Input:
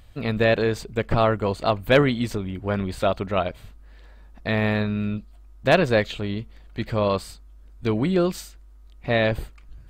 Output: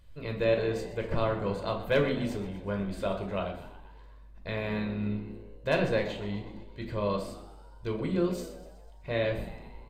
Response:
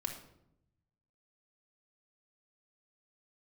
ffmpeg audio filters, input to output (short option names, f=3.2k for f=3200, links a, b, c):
-filter_complex "[0:a]asplit=7[a][b][c][d][e][f][g];[b]adelay=124,afreqshift=68,volume=-15dB[h];[c]adelay=248,afreqshift=136,volume=-19.6dB[i];[d]adelay=372,afreqshift=204,volume=-24.2dB[j];[e]adelay=496,afreqshift=272,volume=-28.7dB[k];[f]adelay=620,afreqshift=340,volume=-33.3dB[l];[g]adelay=744,afreqshift=408,volume=-37.9dB[m];[a][h][i][j][k][l][m]amix=inputs=7:normalize=0[n];[1:a]atrim=start_sample=2205,asetrate=74970,aresample=44100[o];[n][o]afir=irnorm=-1:irlink=0,volume=-5.5dB"